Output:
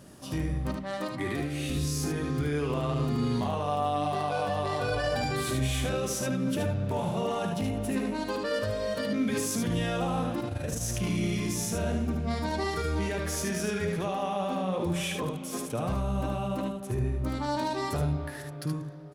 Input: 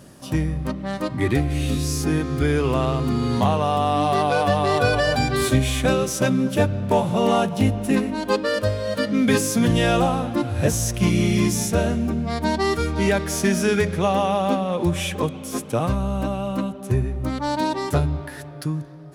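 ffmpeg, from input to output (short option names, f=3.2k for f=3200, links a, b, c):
-filter_complex "[0:a]asettb=1/sr,asplit=3[a][b][c];[a]atrim=end=0.764[d];[b]atrim=start=0.76:end=1.7,asetpts=PTS-STARTPTS,afade=t=in:d=0.004:c=qsin,afade=t=out:st=0.936:d=0.004:c=qsin,highpass=f=280:p=1[e];[c]atrim=start=1.696[f];[d][e]acrossfade=d=0.004:c1=hsin:c2=qsin[g];[g][f]acrossfade=d=0.004:c1=qsin:c2=hsin,alimiter=limit=-18dB:level=0:latency=1:release=11,asettb=1/sr,asplit=3[h][i][j];[h]atrim=end=10.404[k];[i]atrim=start=10.4:end=10.82,asetpts=PTS-STARTPTS,afade=t=in:d=0.004:c=qsin,afade=t=out:st=0.416:d=0.004:c=qsin,tremolo=f=24:d=0.667[l];[j]atrim=start=10.816[m];[k][l]acrossfade=d=0.004:c1=hsin:c2=qsin[n];[n][m]acrossfade=d=0.004:c1=qsin:c2=hsin,aecho=1:1:53|75:0.251|0.596,volume=-5.5dB"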